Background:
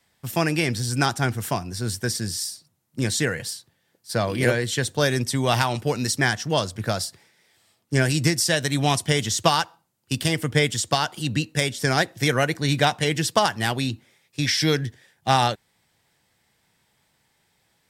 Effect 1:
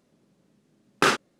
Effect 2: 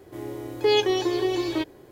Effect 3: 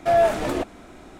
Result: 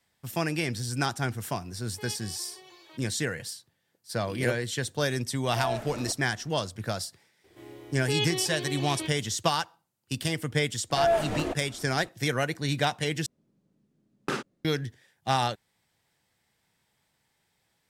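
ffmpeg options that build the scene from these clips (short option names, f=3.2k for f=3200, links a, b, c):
-filter_complex "[2:a]asplit=2[a][b];[3:a]asplit=2[c][d];[0:a]volume=-6.5dB[e];[a]highpass=800[f];[b]equalizer=f=2.8k:t=o:w=1.5:g=9.5[g];[1:a]lowshelf=f=330:g=11.5[h];[e]asplit=2[i][j];[i]atrim=end=13.264[k];[h]atrim=end=1.39,asetpts=PTS-STARTPTS,volume=-13dB[l];[j]atrim=start=14.646[m];[f]atrim=end=1.91,asetpts=PTS-STARTPTS,volume=-18dB,afade=t=in:d=0.004:c=hsin,afade=t=out:st=1.906:d=0.004:c=hsin,adelay=1340[n];[c]atrim=end=1.19,asetpts=PTS-STARTPTS,volume=-14.5dB,afade=t=in:d=0.004:c=hsin,afade=t=out:st=1.186:d=0.004:c=hsin,adelay=242109S[o];[g]atrim=end=1.91,asetpts=PTS-STARTPTS,volume=-12dB,afade=t=in:d=0.004:c=hsin,afade=t=out:st=1.906:d=0.004:c=hsin,adelay=7440[p];[d]atrim=end=1.19,asetpts=PTS-STARTPTS,volume=-6dB,afade=t=in:d=0.004:c=hsin,afade=t=out:st=1.186:d=0.004:c=hsin,adelay=480690S[q];[k][l]acrossfade=d=0.004:c1=hsin:c2=hsin[r];[r][m]acrossfade=d=0.004:c1=hsin:c2=hsin[s];[s][n][o][p][q]amix=inputs=5:normalize=0"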